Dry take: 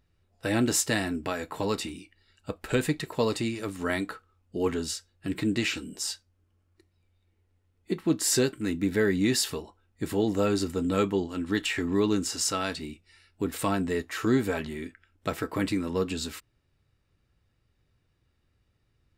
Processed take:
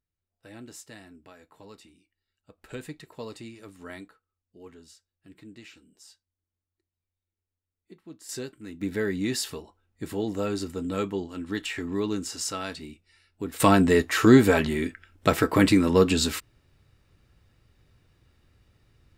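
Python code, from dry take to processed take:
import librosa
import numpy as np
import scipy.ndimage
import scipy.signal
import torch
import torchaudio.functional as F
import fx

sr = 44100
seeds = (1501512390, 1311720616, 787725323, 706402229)

y = fx.gain(x, sr, db=fx.steps((0.0, -19.5), (2.58, -12.5), (4.08, -20.0), (8.29, -11.5), (8.81, -3.5), (13.6, 9.0)))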